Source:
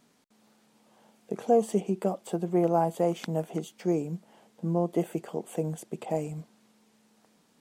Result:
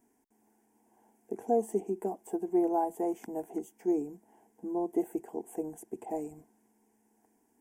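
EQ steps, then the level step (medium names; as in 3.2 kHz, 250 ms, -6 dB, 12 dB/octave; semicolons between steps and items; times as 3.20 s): peaking EQ 2.8 kHz -14.5 dB 1.7 oct; static phaser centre 830 Hz, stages 8; 0.0 dB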